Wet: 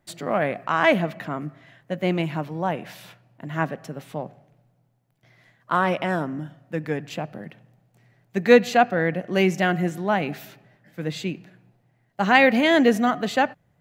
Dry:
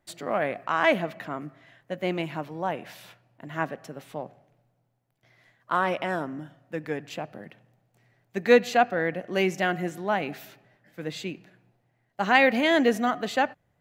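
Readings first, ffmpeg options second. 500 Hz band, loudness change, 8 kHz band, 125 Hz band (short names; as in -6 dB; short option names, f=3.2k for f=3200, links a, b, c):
+3.5 dB, +3.5 dB, +3.0 dB, +8.5 dB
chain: -af "equalizer=f=160:w=1.3:g=6,volume=3dB"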